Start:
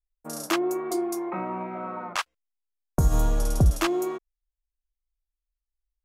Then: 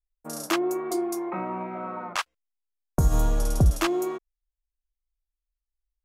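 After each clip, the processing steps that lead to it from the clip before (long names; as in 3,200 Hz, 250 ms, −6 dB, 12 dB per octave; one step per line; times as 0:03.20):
no processing that can be heard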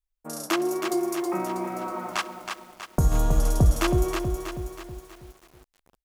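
repeating echo 67 ms, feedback 56%, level −23 dB
feedback echo at a low word length 321 ms, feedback 55%, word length 8 bits, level −5.5 dB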